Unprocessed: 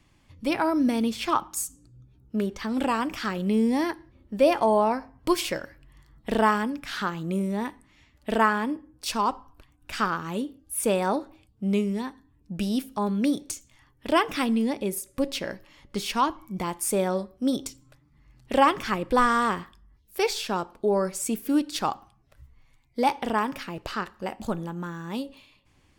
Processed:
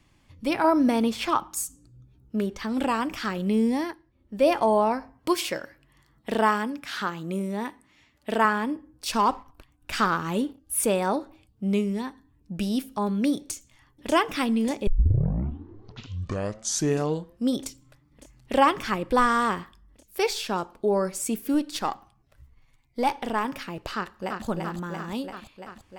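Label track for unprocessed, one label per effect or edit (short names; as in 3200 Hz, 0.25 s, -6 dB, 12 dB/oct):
0.640000	1.280000	bell 890 Hz +7.5 dB 1.9 oct
3.680000	4.490000	dip -11 dB, fades 0.34 s
5.130000	8.450000	HPF 180 Hz 6 dB/oct
9.130000	10.860000	sample leveller passes 1
13.390000	14.120000	echo throw 0.59 s, feedback 80%, level -8.5 dB
14.870000	14.870000	tape start 2.71 s
21.540000	23.450000	half-wave gain negative side -3 dB
23.960000	24.450000	echo throw 0.34 s, feedback 75%, level -3.5 dB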